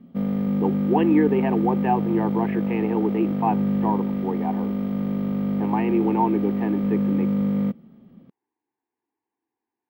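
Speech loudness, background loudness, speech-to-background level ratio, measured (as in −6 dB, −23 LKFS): −25.5 LKFS, −24.5 LKFS, −1.0 dB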